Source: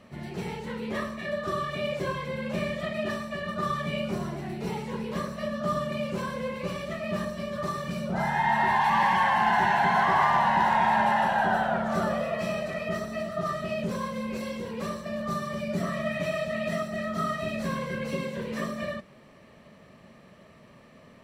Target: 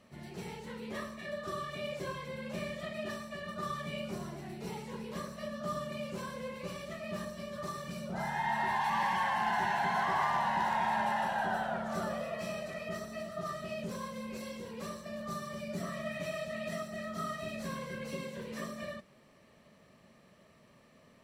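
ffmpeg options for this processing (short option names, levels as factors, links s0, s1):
-af "bass=f=250:g=-1,treble=f=4000:g=6,volume=0.376"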